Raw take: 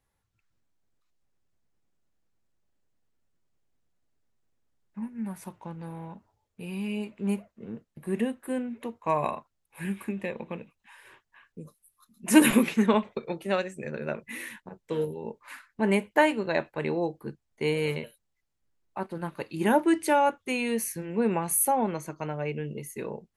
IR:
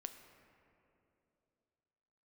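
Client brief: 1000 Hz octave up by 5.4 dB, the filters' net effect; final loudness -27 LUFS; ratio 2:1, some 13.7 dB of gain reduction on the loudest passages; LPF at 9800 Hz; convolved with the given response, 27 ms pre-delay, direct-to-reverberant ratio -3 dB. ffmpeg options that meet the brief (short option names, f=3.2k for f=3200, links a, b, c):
-filter_complex "[0:a]lowpass=9.8k,equalizer=f=1k:t=o:g=6.5,acompressor=threshold=-37dB:ratio=2,asplit=2[a][b];[1:a]atrim=start_sample=2205,adelay=27[c];[b][c]afir=irnorm=-1:irlink=0,volume=7dB[d];[a][d]amix=inputs=2:normalize=0,volume=4.5dB"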